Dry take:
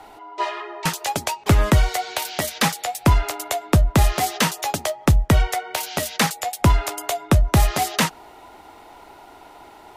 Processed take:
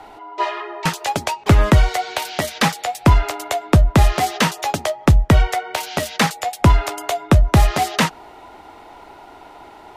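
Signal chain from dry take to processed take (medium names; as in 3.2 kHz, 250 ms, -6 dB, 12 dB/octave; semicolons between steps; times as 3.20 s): treble shelf 6.9 kHz -10 dB; trim +3.5 dB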